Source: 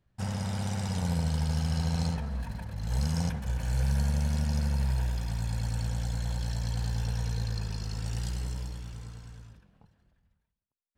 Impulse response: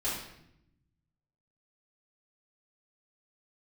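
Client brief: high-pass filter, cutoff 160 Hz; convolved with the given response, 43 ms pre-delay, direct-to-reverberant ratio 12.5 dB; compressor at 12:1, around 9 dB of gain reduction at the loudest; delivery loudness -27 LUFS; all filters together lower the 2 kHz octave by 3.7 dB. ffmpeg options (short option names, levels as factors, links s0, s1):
-filter_complex "[0:a]highpass=160,equalizer=f=2000:t=o:g=-5,acompressor=threshold=0.0112:ratio=12,asplit=2[s0][s1];[1:a]atrim=start_sample=2205,adelay=43[s2];[s1][s2]afir=irnorm=-1:irlink=0,volume=0.119[s3];[s0][s3]amix=inputs=2:normalize=0,volume=7.08"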